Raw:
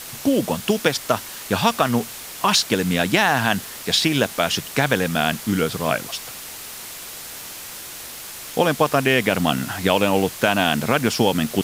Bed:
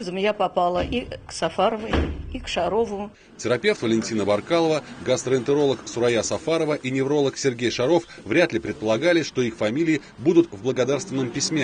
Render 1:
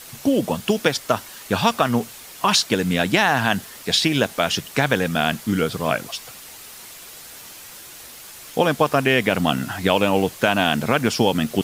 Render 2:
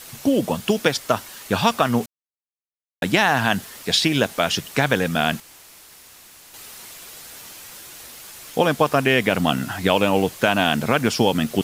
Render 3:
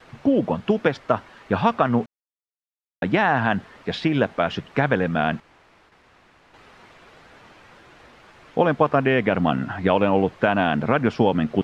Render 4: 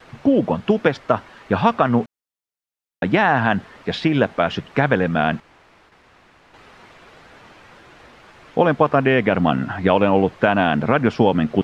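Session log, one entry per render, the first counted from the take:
noise reduction 6 dB, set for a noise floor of -36 dBFS
2.06–3.02 s: mute; 5.40–6.54 s: room tone
low-pass 1.8 kHz 12 dB/octave; gate with hold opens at -46 dBFS
trim +3 dB; peak limiter -2 dBFS, peak gain reduction 1 dB

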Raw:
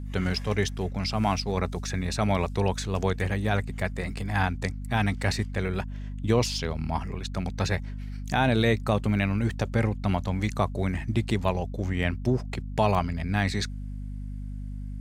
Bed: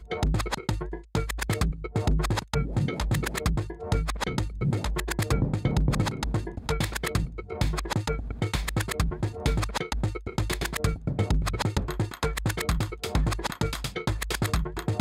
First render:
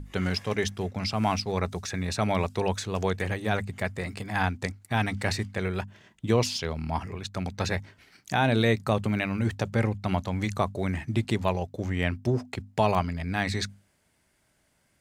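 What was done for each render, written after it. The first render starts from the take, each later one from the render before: hum notches 50/100/150/200/250 Hz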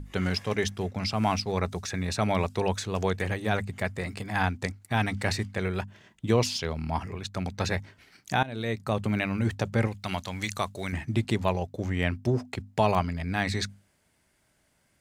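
8.43–9.14 s: fade in, from -20 dB; 9.87–10.93 s: tilt shelf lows -7 dB, about 1.4 kHz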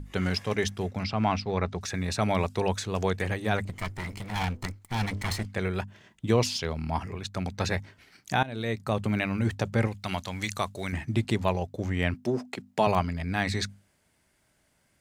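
1.03–1.81 s: low-pass 3.9 kHz; 3.65–5.46 s: comb filter that takes the minimum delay 0.95 ms; 12.14–12.87 s: high-pass 160 Hz 24 dB/octave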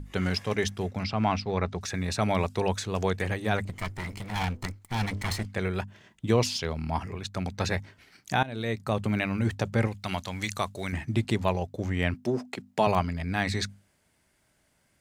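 no audible change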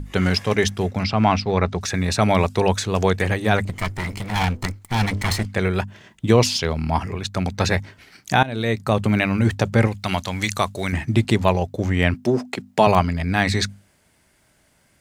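trim +8.5 dB; peak limiter -2 dBFS, peak gain reduction 1 dB

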